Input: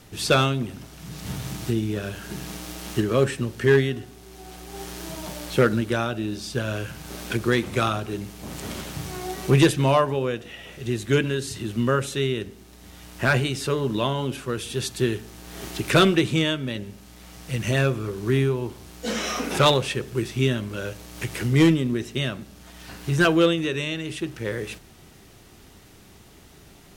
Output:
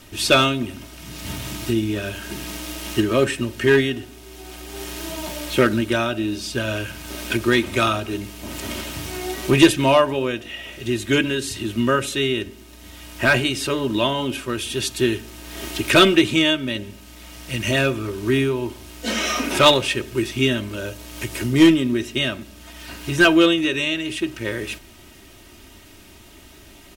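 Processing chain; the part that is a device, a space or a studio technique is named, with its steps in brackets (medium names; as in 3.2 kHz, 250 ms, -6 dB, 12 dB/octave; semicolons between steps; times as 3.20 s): presence and air boost (peaking EQ 2.7 kHz +5 dB 0.82 oct; treble shelf 10 kHz +3.5 dB); comb 3.2 ms, depth 57%; 20.67–21.62 s: dynamic bell 2.3 kHz, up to -5 dB, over -41 dBFS, Q 0.8; trim +2 dB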